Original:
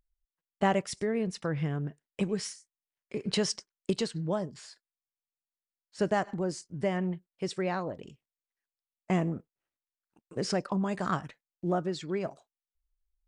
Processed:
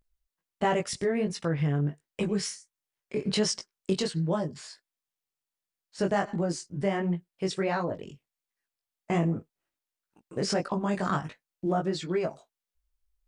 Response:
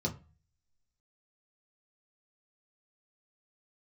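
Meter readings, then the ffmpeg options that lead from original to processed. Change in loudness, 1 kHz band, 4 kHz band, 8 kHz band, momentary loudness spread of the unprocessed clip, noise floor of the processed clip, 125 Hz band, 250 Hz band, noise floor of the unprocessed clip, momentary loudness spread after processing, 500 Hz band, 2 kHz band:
+2.5 dB, +2.0 dB, +3.0 dB, +3.5 dB, 11 LU, under -85 dBFS, +3.5 dB, +2.0 dB, under -85 dBFS, 9 LU, +2.5 dB, +2.0 dB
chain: -filter_complex "[0:a]flanger=delay=17.5:depth=3.6:speed=1.4,asplit=2[a][b];[b]alimiter=level_in=3dB:limit=-24dB:level=0:latency=1,volume=-3dB,volume=2dB[c];[a][c]amix=inputs=2:normalize=0"

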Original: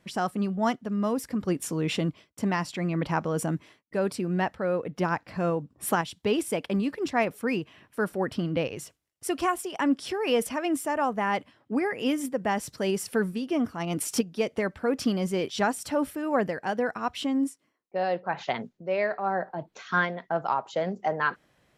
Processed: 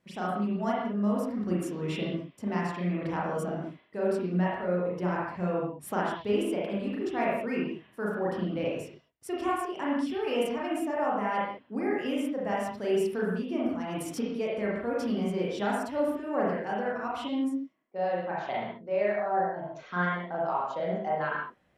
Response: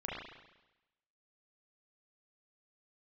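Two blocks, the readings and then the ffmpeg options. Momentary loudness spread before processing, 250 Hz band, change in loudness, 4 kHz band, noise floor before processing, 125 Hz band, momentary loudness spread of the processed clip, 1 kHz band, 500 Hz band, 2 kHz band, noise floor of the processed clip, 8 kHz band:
5 LU, -2.0 dB, -2.0 dB, -6.5 dB, -71 dBFS, -2.0 dB, 5 LU, -2.0 dB, -1.0 dB, -4.5 dB, -61 dBFS, -11.5 dB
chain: -filter_complex "[0:a]equalizer=f=410:w=0.35:g=3[a];[1:a]atrim=start_sample=2205,afade=t=out:st=0.26:d=0.01,atrim=end_sample=11907[b];[a][b]afir=irnorm=-1:irlink=0,volume=-7.5dB"

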